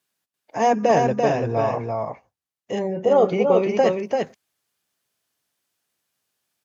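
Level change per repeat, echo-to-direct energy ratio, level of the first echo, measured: no regular repeats, -4.0 dB, -4.0 dB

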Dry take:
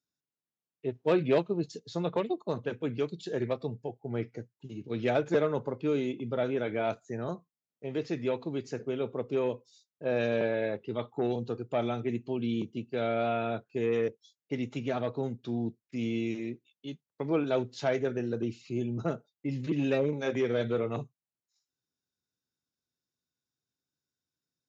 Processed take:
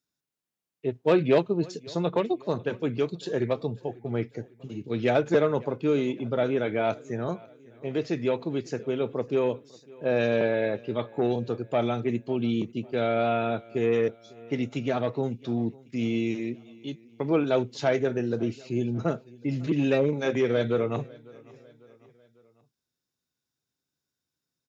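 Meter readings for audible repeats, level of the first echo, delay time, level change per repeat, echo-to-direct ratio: 2, -23.5 dB, 549 ms, -6.0 dB, -22.5 dB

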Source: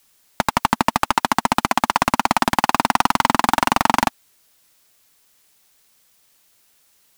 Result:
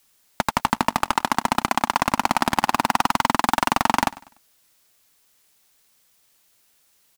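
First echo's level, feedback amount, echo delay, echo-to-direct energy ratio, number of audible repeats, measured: -20.0 dB, 36%, 98 ms, -19.5 dB, 2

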